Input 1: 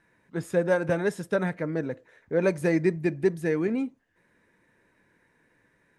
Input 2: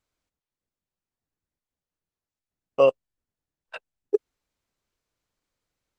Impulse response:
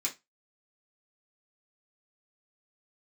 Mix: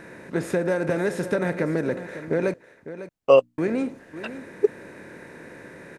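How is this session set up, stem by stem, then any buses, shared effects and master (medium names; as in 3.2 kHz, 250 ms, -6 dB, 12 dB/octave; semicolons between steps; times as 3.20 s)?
+3.0 dB, 0.00 s, muted 2.54–3.58 s, no send, echo send -13 dB, spectral levelling over time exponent 0.6; compression 6:1, threshold -23 dBFS, peak gain reduction 8 dB
+3.0 dB, 0.50 s, no send, no echo send, hum notches 60/120/180/240/300 Hz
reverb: none
echo: delay 551 ms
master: none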